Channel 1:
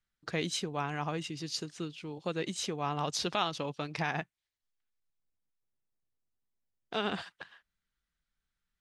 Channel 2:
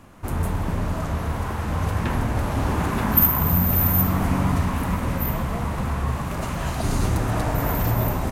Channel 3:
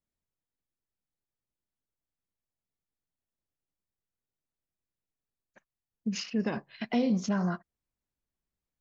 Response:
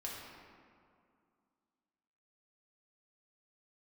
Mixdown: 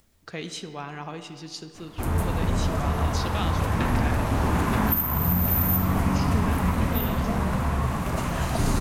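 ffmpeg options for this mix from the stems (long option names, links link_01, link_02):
-filter_complex "[0:a]volume=-4dB,asplit=3[link_01][link_02][link_03];[link_02]volume=-4.5dB[link_04];[1:a]adelay=1750,volume=-2dB,asplit=2[link_05][link_06];[link_06]volume=-6.5dB[link_07];[2:a]equalizer=frequency=80:width_type=o:width=0.77:gain=9,acompressor=mode=upward:threshold=-43dB:ratio=2.5,volume=-3.5dB,asplit=2[link_08][link_09];[link_09]volume=-3dB[link_10];[link_03]apad=whole_len=388322[link_11];[link_08][link_11]sidechaincompress=threshold=-53dB:ratio=8:attack=16:release=271[link_12];[3:a]atrim=start_sample=2205[link_13];[link_04][link_07][link_10]amix=inputs=3:normalize=0[link_14];[link_14][link_13]afir=irnorm=-1:irlink=0[link_15];[link_01][link_05][link_12][link_15]amix=inputs=4:normalize=0,alimiter=limit=-12dB:level=0:latency=1:release=403"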